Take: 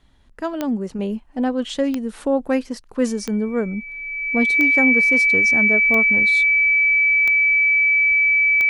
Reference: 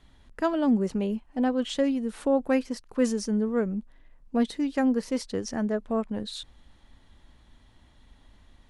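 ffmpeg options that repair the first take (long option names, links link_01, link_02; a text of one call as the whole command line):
ffmpeg -i in.wav -af "adeclick=threshold=4,bandreject=frequency=2300:width=30,asetnsamples=nb_out_samples=441:pad=0,asendcmd='0.99 volume volume -4dB',volume=0dB" out.wav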